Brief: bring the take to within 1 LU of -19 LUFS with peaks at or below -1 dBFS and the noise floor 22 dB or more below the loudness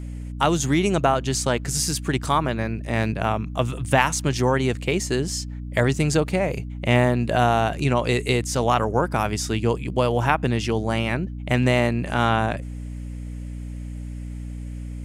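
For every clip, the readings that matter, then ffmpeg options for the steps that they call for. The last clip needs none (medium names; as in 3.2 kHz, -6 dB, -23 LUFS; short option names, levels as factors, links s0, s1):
hum 60 Hz; highest harmonic 300 Hz; hum level -30 dBFS; loudness -22.5 LUFS; peak level -3.5 dBFS; loudness target -19.0 LUFS
-> -af "bandreject=f=60:t=h:w=6,bandreject=f=120:t=h:w=6,bandreject=f=180:t=h:w=6,bandreject=f=240:t=h:w=6,bandreject=f=300:t=h:w=6"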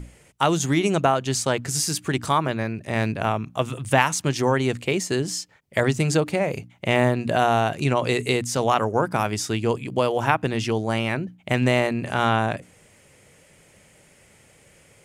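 hum not found; loudness -23.0 LUFS; peak level -3.5 dBFS; loudness target -19.0 LUFS
-> -af "volume=1.58,alimiter=limit=0.891:level=0:latency=1"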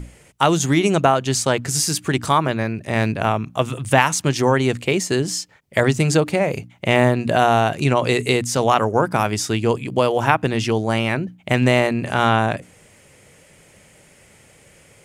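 loudness -19.0 LUFS; peak level -1.0 dBFS; noise floor -51 dBFS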